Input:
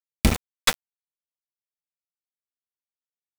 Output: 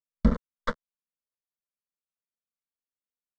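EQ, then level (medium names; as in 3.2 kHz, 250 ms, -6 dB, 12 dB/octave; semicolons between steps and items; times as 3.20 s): tape spacing loss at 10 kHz 45 dB; static phaser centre 510 Hz, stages 8; +2.0 dB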